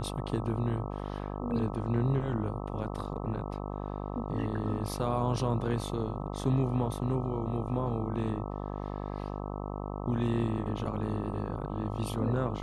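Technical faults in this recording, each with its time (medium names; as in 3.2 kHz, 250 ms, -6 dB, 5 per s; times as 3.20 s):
buzz 50 Hz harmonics 26 -37 dBFS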